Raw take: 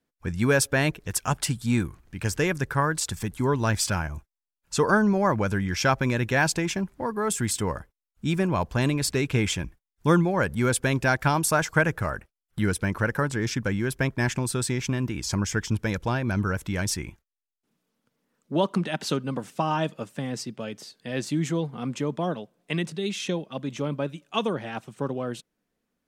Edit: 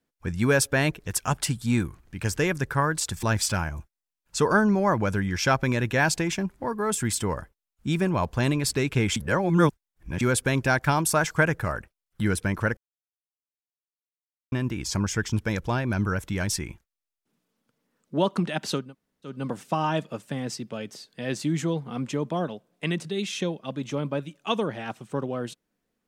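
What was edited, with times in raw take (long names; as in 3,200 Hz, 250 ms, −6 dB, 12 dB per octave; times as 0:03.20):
0:03.23–0:03.61: remove
0:09.54–0:10.59: reverse
0:13.15–0:14.90: silence
0:19.21: splice in room tone 0.51 s, crossfade 0.24 s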